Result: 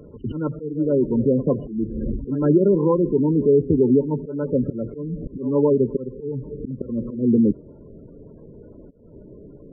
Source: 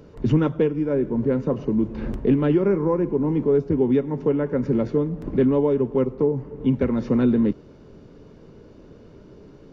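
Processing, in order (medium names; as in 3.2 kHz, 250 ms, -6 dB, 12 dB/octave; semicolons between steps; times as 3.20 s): slow attack 253 ms; spectral gate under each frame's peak -20 dB strong; reverse echo 104 ms -16.5 dB; trim +3 dB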